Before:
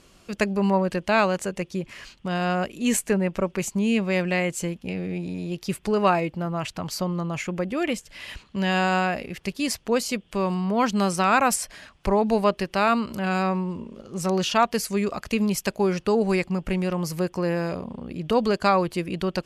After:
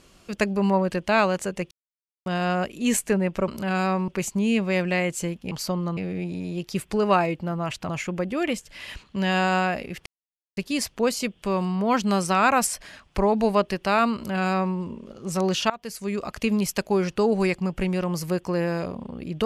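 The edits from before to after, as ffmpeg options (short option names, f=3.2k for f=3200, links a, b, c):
-filter_complex "[0:a]asplit=10[a][b][c][d][e][f][g][h][i][j];[a]atrim=end=1.71,asetpts=PTS-STARTPTS,afade=t=out:st=1.706:d=0.004:c=hsin[k];[b]atrim=start=1.71:end=2.26,asetpts=PTS-STARTPTS,volume=0[l];[c]atrim=start=2.26:end=3.482,asetpts=PTS-STARTPTS,afade=t=in:d=0.004:c=hsin[m];[d]atrim=start=13.038:end=13.642[n];[e]atrim=start=3.478:end=4.912[o];[f]atrim=start=6.828:end=7.292[p];[g]atrim=start=4.908:end=6.832[q];[h]atrim=start=7.288:end=9.46,asetpts=PTS-STARTPTS,afade=t=out:st=2.168:d=0.004:c=hsin,apad=pad_dur=0.51[r];[i]atrim=start=9.46:end=14.59,asetpts=PTS-STARTPTS,afade=t=in:d=0.004:c=hsin,afade=t=out:st=5.126:d=0.004:c=hsin:silence=0.0841395[s];[j]atrim=start=14.59,asetpts=PTS-STARTPTS,afade=t=in:d=0.67:silence=0.0841395[t];[k][l][m]concat=n=3:v=0:a=1[u];[u][n]acrossfade=d=0.004:c1=hsin:c2=hsin[v];[v][o]acrossfade=d=0.004:c1=hsin:c2=hsin[w];[w][p]acrossfade=d=0.004:c1=hsin:c2=hsin[x];[x][q]acrossfade=d=0.004:c1=hsin:c2=hsin[y];[r][s][t]concat=n=3:v=0:a=1[z];[y][z]acrossfade=d=0.004:c1=hsin:c2=hsin"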